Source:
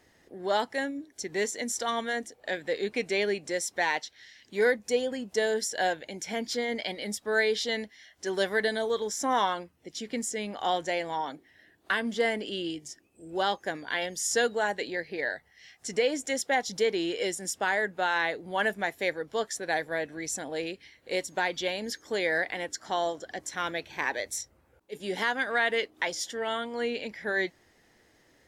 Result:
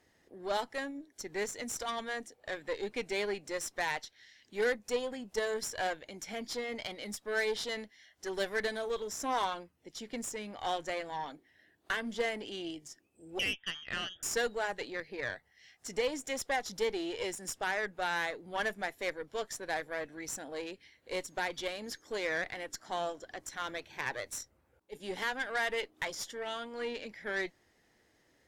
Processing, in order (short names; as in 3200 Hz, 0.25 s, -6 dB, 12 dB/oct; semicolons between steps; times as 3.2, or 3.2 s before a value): 13.39–14.23 inverted band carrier 3500 Hz; added harmonics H 6 -20 dB, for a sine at -14.5 dBFS; gain -6.5 dB